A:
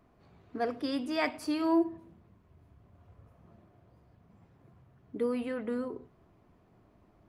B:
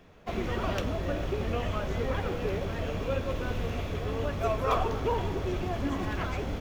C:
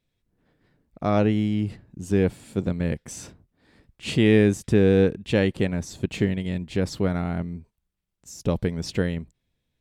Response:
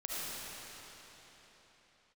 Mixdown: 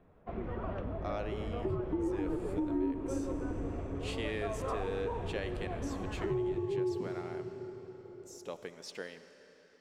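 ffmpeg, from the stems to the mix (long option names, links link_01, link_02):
-filter_complex "[0:a]aeval=exprs='val(0)*sin(2*PI*610*n/s)':channel_layout=same,lowpass=frequency=410:width_type=q:width=5.1,adelay=1100,volume=2dB,asplit=2[link_01][link_02];[link_02]volume=-10dB[link_03];[1:a]lowpass=1300,volume=-6.5dB[link_04];[2:a]highpass=520,volume=-12.5dB,asplit=2[link_05][link_06];[link_06]volume=-13dB[link_07];[3:a]atrim=start_sample=2205[link_08];[link_03][link_07]amix=inputs=2:normalize=0[link_09];[link_09][link_08]afir=irnorm=-1:irlink=0[link_10];[link_01][link_04][link_05][link_10]amix=inputs=4:normalize=0,acompressor=threshold=-31dB:ratio=4"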